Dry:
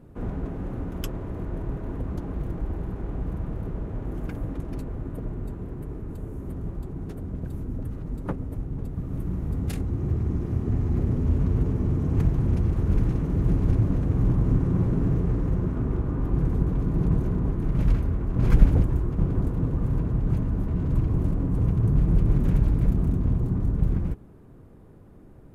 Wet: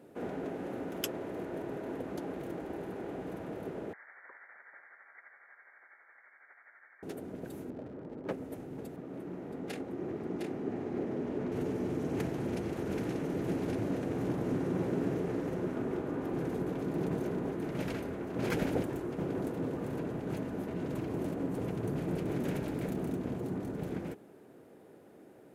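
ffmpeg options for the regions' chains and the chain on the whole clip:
ffmpeg -i in.wav -filter_complex "[0:a]asettb=1/sr,asplit=3[link_01][link_02][link_03];[link_01]atrim=end=3.934[link_04];[link_02]atrim=start=3.93:end=7.03,asetpts=PTS-STARTPTS,afade=type=in:duration=0.004:curve=qsin,afade=type=out:start_time=3.096:duration=0.004:curve=qsin,highpass=frequency=850:width=0.5412,highpass=frequency=850:width=1.3066,tremolo=f=12:d=0.48,lowpass=frequency=2200:width_type=q:width=0.5098,lowpass=frequency=2200:width_type=q:width=0.6013,lowpass=frequency=2200:width_type=q:width=0.9,lowpass=frequency=2200:width_type=q:width=2.563,afreqshift=-2600[link_05];[link_03]atrim=start=7.026[link_06];[link_04][link_05]acrossfade=duration=0.004:curve1=hsin:curve2=qsin[link_07];[link_07][link_06]acrossfade=duration=0.004:curve1=qsin:curve2=hsin,asettb=1/sr,asplit=3[link_08][link_09][link_10];[link_08]atrim=end=7.704[link_11];[link_09]atrim=start=7.7:end=8.31,asetpts=PTS-STARTPTS,afade=type=in:duration=0.004:curve=qsin,afade=type=out:start_time=0.606:duration=0.004:curve=qsin,lowpass=1300,bandreject=frequency=750:width=16,asoftclip=type=hard:threshold=-28dB[link_12];[link_10]atrim=start=8.306[link_13];[link_11][link_12]acrossfade=duration=0.004:curve1=hsin:curve2=qsin[link_14];[link_14][link_13]acrossfade=duration=0.004:curve1=qsin:curve2=hsin,asettb=1/sr,asplit=3[link_15][link_16][link_17];[link_15]atrim=end=8.964[link_18];[link_16]atrim=start=8.96:end=11.52,asetpts=PTS-STARTPTS,afade=type=in:duration=0.004:curve=qsin,afade=type=out:start_time=2.556:duration=0.004:curve=qsin,lowpass=frequency=1900:poles=1,equalizer=frequency=74:width=0.79:gain=-10,aecho=1:1:709:0.596,atrim=end_sample=112896[link_19];[link_17]atrim=start=11.516[link_20];[link_18][link_19]acrossfade=duration=0.004:curve1=hsin:curve2=qsin[link_21];[link_21][link_20]acrossfade=duration=0.004:curve1=qsin:curve2=hsin,highpass=390,equalizer=frequency=1100:width=2.6:gain=-9,volume=3.5dB" out.wav

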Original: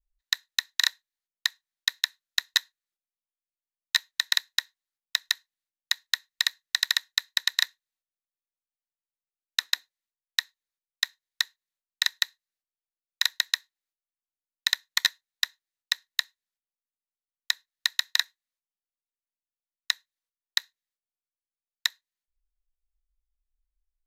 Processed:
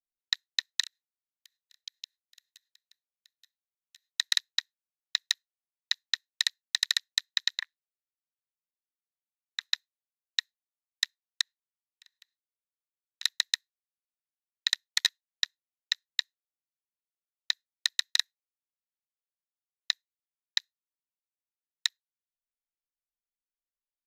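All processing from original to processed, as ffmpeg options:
ffmpeg -i in.wav -filter_complex "[0:a]asettb=1/sr,asplit=3[link_01][link_02][link_03];[link_01]atrim=end=0.824[link_04];[link_02]atrim=start=0.82:end=4.1,asetpts=PTS-STARTPTS,afade=type=in:duration=0.004:curve=qsin,afade=type=out:start_time=3.276:duration=0.004:curve=qsin,highpass=1200,aecho=1:1:876:0.158,atrim=end_sample=144648,acompressor=threshold=-35dB:ratio=6:attack=3.2:release=140:knee=1:detection=peak[link_05];[link_03]atrim=start=4.096[link_06];[link_04][link_05]acrossfade=duration=0.004:curve1=hsin:curve2=qsin[link_07];[link_07][link_06]acrossfade=duration=0.004:curve1=qsin:curve2=hsin,asettb=1/sr,asplit=3[link_08][link_09][link_10];[link_08]atrim=end=7.584[link_11];[link_09]atrim=start=7.58:end=9.61,asetpts=PTS-STARTPTS,afade=type=in:duration=0.004:curve=qsin,afade=type=out:start_time=2.026:duration=0.004:curve=qsin,lowpass=frequency=2500:poles=1,aeval=exprs='val(0)*sin(2*PI*80*n/s)':channel_layout=same[link_12];[link_10]atrim=start=9.606[link_13];[link_11][link_12]acrossfade=duration=0.004:curve1=hsin:curve2=qsin[link_14];[link_14][link_13]acrossfade=duration=0.004:curve1=qsin:curve2=hsin,asettb=1/sr,asplit=3[link_15][link_16][link_17];[link_15]atrim=end=11.414[link_18];[link_16]atrim=start=11.41:end=13.23,asetpts=PTS-STARTPTS,afade=type=in:duration=0.004:curve=qsin,afade=type=out:start_time=1.816:duration=0.004:curve=qsin,highshelf=frequency=6400:gain=-8.5,acompressor=threshold=-41dB:ratio=2.5:attack=3.2:release=140:knee=1:detection=peak[link_19];[link_17]atrim=start=13.226[link_20];[link_18][link_19]acrossfade=duration=0.004:curve1=hsin:curve2=qsin[link_21];[link_21][link_20]acrossfade=duration=0.004:curve1=qsin:curve2=hsin,tiltshelf=frequency=1200:gain=-7.5,afwtdn=0.02,volume=-8dB" out.wav

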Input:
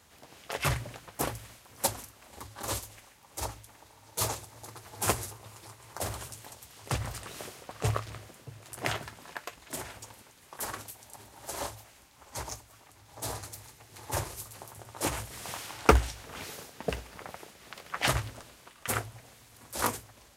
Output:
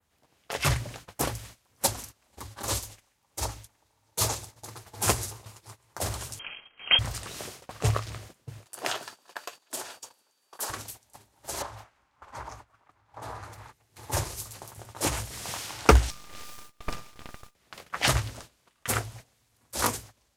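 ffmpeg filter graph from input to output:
ffmpeg -i in.wav -filter_complex "[0:a]asettb=1/sr,asplit=3[link_01][link_02][link_03];[link_01]atrim=end=6.394[link_04];[link_02]atrim=start=6.39:end=6.99,asetpts=PTS-STARTPTS,afade=type=in:duration=0.004:curve=qsin,afade=type=out:start_time=0.596:duration=0.004:curve=qsin,bandreject=frequency=1500:width=17,acontrast=78,lowpass=frequency=2800:width_type=q:width=0.5098,lowpass=frequency=2800:width_type=q:width=0.6013,lowpass=frequency=2800:width_type=q:width=0.9,lowpass=frequency=2800:width_type=q:width=2.563,afreqshift=-3300[link_05];[link_03]atrim=start=6.986[link_06];[link_04][link_05]acrossfade=duration=0.004:curve1=hsin:curve2=qsin[link_07];[link_07][link_06]acrossfade=duration=0.004:curve1=qsin:curve2=hsin,asettb=1/sr,asplit=3[link_08][link_09][link_10];[link_08]atrim=end=8.674[link_11];[link_09]atrim=start=8.67:end=10.7,asetpts=PTS-STARTPTS,afade=type=in:duration=0.004:curve=qsin,afade=type=out:start_time=2.026:duration=0.004:curve=qsin,highpass=370,aeval=exprs='val(0)+0.000794*sin(2*PI*4600*n/s)':channel_layout=same,equalizer=frequency=2100:width_type=o:width=0.28:gain=-7.5[link_12];[link_10]atrim=start=10.696[link_13];[link_11][link_12]acrossfade=duration=0.004:curve1=hsin:curve2=qsin[link_14];[link_14][link_13]acrossfade=duration=0.004:curve1=qsin:curve2=hsin,asettb=1/sr,asplit=3[link_15][link_16][link_17];[link_15]atrim=end=11.624[link_18];[link_16]atrim=start=11.62:end=13.73,asetpts=PTS-STARTPTS,afade=type=in:duration=0.004:curve=qsin,afade=type=out:start_time=2.106:duration=0.004:curve=qsin,equalizer=frequency=1200:width_type=o:width=1.7:gain=11,acompressor=threshold=-40dB:ratio=2.5:attack=3.2:release=140:knee=1:detection=peak,lowpass=frequency=2600:poles=1[link_19];[link_17]atrim=start=13.726[link_20];[link_18][link_19]acrossfade=duration=0.004:curve1=hsin:curve2=qsin[link_21];[link_21][link_20]acrossfade=duration=0.004:curve1=qsin:curve2=hsin,asettb=1/sr,asplit=3[link_22][link_23][link_24];[link_22]atrim=end=16.104[link_25];[link_23]atrim=start=16.1:end=17.55,asetpts=PTS-STARTPTS,afade=type=in:duration=0.004:curve=qsin,afade=type=out:start_time=1.446:duration=0.004:curve=qsin,aeval=exprs='val(0)*sin(2*PI*600*n/s)':channel_layout=same,aeval=exprs='abs(val(0))':channel_layout=same[link_26];[link_24]atrim=start=17.546[link_27];[link_25][link_26]acrossfade=duration=0.004:curve1=hsin:curve2=qsin[link_28];[link_28][link_27]acrossfade=duration=0.004:curve1=qsin:curve2=hsin,lowshelf=frequency=150:gain=4.5,agate=range=-16dB:threshold=-47dB:ratio=16:detection=peak,adynamicequalizer=threshold=0.00398:dfrequency=5600:dqfactor=0.76:tfrequency=5600:tqfactor=0.76:attack=5:release=100:ratio=0.375:range=2.5:mode=boostabove:tftype=bell,volume=1.5dB" out.wav

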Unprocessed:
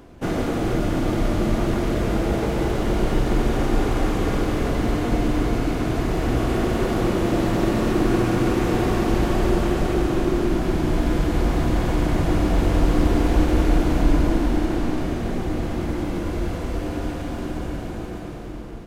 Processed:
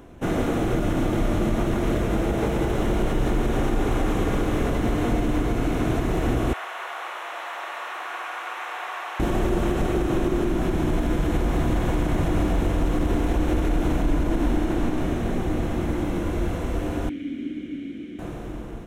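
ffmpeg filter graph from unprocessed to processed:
ffmpeg -i in.wav -filter_complex "[0:a]asettb=1/sr,asplit=3[link_01][link_02][link_03];[link_01]atrim=end=6.534[link_04];[link_02]atrim=start=6.53:end=9.2,asetpts=PTS-STARTPTS,afade=type=in:duration=0.004:curve=qsin,afade=type=out:start_time=2.666:duration=0.004:curve=qsin,highpass=frequency=850:width=0.5412,highpass=frequency=850:width=1.3066,acrossover=split=3500[link_05][link_06];[link_06]acompressor=threshold=-52dB:ratio=4:attack=1:release=60[link_07];[link_05][link_07]amix=inputs=2:normalize=0[link_08];[link_03]atrim=start=9.196[link_09];[link_04][link_08]acrossfade=duration=0.004:curve1=hsin:curve2=qsin[link_10];[link_10][link_09]acrossfade=duration=0.004:curve1=qsin:curve2=hsin,asettb=1/sr,asplit=3[link_11][link_12][link_13];[link_11]atrim=end=17.094[link_14];[link_12]atrim=start=17.09:end=18.19,asetpts=PTS-STARTPTS,afade=type=in:duration=0.004:curve=qsin,afade=type=out:start_time=1.096:duration=0.004:curve=qsin,acrusher=bits=6:mix=0:aa=0.5,acontrast=71,asplit=3[link_15][link_16][link_17];[link_15]bandpass=frequency=270:width_type=q:width=8,volume=0dB[link_18];[link_16]bandpass=frequency=2290:width_type=q:width=8,volume=-6dB[link_19];[link_17]bandpass=frequency=3010:width_type=q:width=8,volume=-9dB[link_20];[link_18][link_19][link_20]amix=inputs=3:normalize=0[link_21];[link_13]atrim=start=18.186[link_22];[link_14][link_21]acrossfade=duration=0.004:curve1=hsin:curve2=qsin[link_23];[link_23][link_22]acrossfade=duration=0.004:curve1=qsin:curve2=hsin,equalizer=frequency=4700:width=6.7:gain=-14,alimiter=limit=-13.5dB:level=0:latency=1:release=74" out.wav

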